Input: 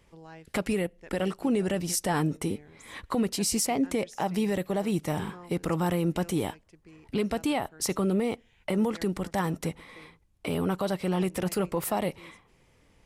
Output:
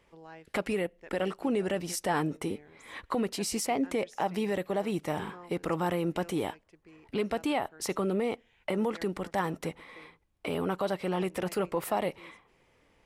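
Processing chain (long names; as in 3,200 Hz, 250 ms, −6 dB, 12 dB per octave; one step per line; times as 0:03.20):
bass and treble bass −8 dB, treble −7 dB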